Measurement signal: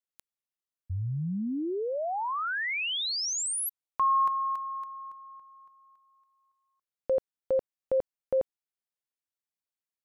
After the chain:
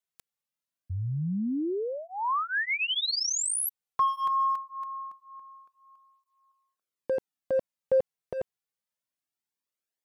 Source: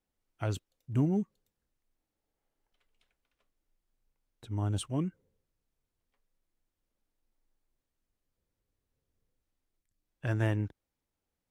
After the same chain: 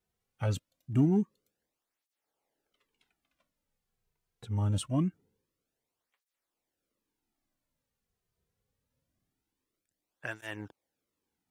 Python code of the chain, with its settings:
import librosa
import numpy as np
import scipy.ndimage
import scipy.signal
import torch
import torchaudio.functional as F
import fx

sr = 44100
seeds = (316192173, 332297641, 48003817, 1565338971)

p1 = np.clip(x, -10.0 ** (-27.5 / 20.0), 10.0 ** (-27.5 / 20.0))
p2 = x + F.gain(torch.from_numpy(p1), -10.0).numpy()
p3 = fx.flanger_cancel(p2, sr, hz=0.24, depth_ms=3.7)
y = F.gain(torch.from_numpy(p3), 2.5).numpy()